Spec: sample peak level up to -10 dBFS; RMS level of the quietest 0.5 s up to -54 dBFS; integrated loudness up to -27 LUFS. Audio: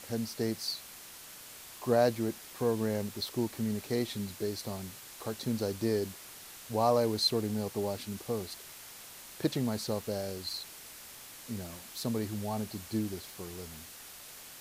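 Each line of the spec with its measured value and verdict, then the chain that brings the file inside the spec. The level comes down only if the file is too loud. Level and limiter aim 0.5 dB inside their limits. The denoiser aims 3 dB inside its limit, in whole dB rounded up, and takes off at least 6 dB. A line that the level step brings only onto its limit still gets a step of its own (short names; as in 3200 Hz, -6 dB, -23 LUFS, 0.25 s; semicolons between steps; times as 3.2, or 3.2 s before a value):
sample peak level -14.0 dBFS: OK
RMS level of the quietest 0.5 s -49 dBFS: fail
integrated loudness -33.5 LUFS: OK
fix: denoiser 8 dB, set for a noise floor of -49 dBFS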